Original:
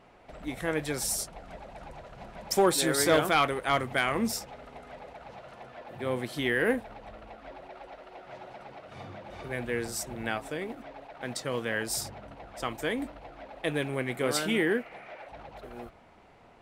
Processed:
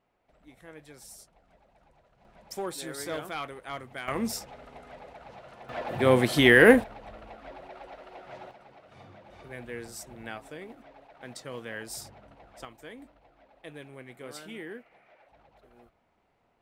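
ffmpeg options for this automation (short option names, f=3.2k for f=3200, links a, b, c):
-af "asetnsamples=n=441:p=0,asendcmd='2.25 volume volume -11.5dB;4.08 volume volume -1.5dB;5.69 volume volume 10.5dB;6.84 volume volume 0.5dB;8.51 volume volume -7.5dB;12.65 volume volume -14.5dB',volume=-18dB"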